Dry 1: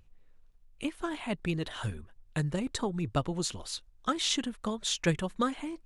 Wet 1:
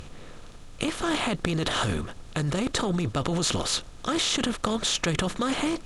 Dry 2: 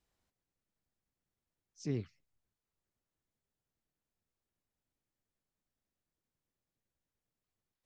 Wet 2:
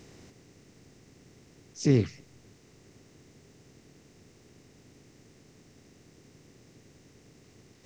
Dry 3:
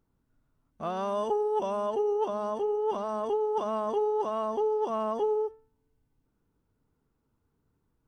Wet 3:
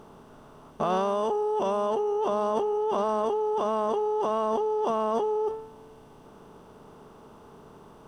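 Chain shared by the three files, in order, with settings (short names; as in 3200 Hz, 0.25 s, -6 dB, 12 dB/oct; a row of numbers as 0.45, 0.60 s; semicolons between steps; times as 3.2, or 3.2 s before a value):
per-bin compression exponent 0.6; in parallel at +3 dB: negative-ratio compressor -31 dBFS, ratio -0.5; on the sum: match loudness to -27 LUFS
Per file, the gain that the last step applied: -2.5, +5.0, -4.0 dB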